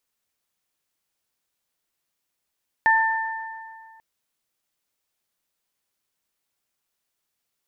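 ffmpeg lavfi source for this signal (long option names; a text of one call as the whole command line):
ffmpeg -f lavfi -i "aevalsrc='0.15*pow(10,-3*t/2.11)*sin(2*PI*893*t)+0.168*pow(10,-3*t/1.77)*sin(2*PI*1786*t)':duration=1.14:sample_rate=44100" out.wav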